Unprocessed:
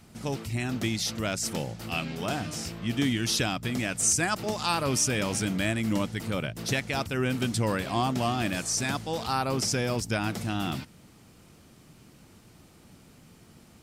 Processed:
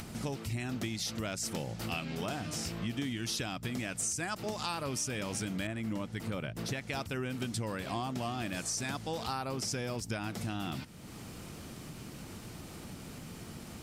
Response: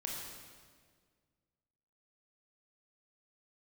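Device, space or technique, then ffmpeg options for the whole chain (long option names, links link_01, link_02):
upward and downward compression: -filter_complex "[0:a]acompressor=mode=upward:threshold=-40dB:ratio=2.5,acompressor=threshold=-36dB:ratio=5,asettb=1/sr,asplit=3[link_01][link_02][link_03];[link_01]atrim=end=5.674[link_04];[link_02]atrim=start=5.67:end=6.81,asetpts=PTS-STARTPTS,afade=type=in:duration=0.004:curve=qsin,afade=type=out:start_time=1.136:duration=0.004:curve=qsin,adynamicequalizer=threshold=0.002:dfrequency=2800:dqfactor=0.7:tfrequency=2800:tqfactor=0.7:attack=5:release=100:ratio=0.375:range=3:mode=cutabove:tftype=highshelf[link_05];[link_03]atrim=start=6.806[link_06];[link_04][link_05]acrossfade=duration=0.004:curve1=hsin:curve2=qsin[link_07];[link_07][link_06]acrossfade=duration=0.004:curve1=qsin:curve2=hsin,volume=2.5dB"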